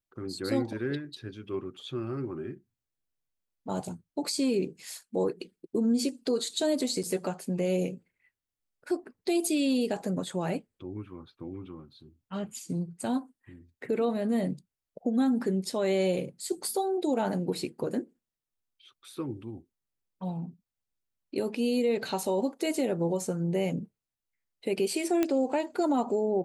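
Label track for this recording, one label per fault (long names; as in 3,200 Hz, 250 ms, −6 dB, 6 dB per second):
7.030000	7.040000	drop-out 5.7 ms
25.230000	25.230000	click −13 dBFS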